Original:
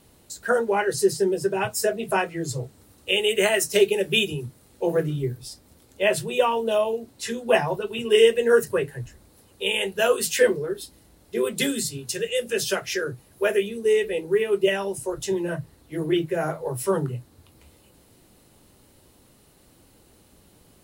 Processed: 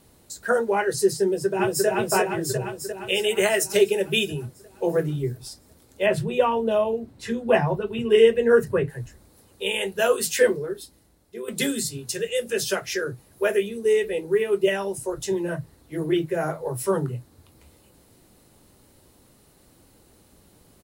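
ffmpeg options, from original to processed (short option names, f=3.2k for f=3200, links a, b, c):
-filter_complex "[0:a]asplit=2[a][b];[b]afade=t=in:st=1.24:d=0.01,afade=t=out:st=1.87:d=0.01,aecho=0:1:350|700|1050|1400|1750|2100|2450|2800|3150|3500|3850:0.891251|0.579313|0.376554|0.24476|0.159094|0.103411|0.0672172|0.0436912|0.0283992|0.0184595|0.0119987[c];[a][c]amix=inputs=2:normalize=0,asettb=1/sr,asplit=3[d][e][f];[d]atrim=end=6.064[g];[e]atrim=start=6.06:end=8.9,asetpts=PTS-STARTPTS,afade=t=in:d=0.004:c=qsin,afade=t=out:st=2.836:d=0.004:c=qsin,bass=f=250:g=8,treble=f=4k:g=-10[h];[f]atrim=start=8.896[i];[g][h]acrossfade=d=0.004:c1=hsin:c2=qsin[j];[j][i]acrossfade=d=0.004:c1=qsin:c2=hsin,asplit=2[k][l];[k]atrim=end=11.48,asetpts=PTS-STARTPTS,afade=t=out:st=10.46:d=1.02:silence=0.237137[m];[l]atrim=start=11.48,asetpts=PTS-STARTPTS,afade=t=in:d=0.004:c=hsin:silence=0.237137[n];[m][n]concat=n=2:v=0:a=1,equalizer=f=2.9k:t=o:w=0.57:g=-3"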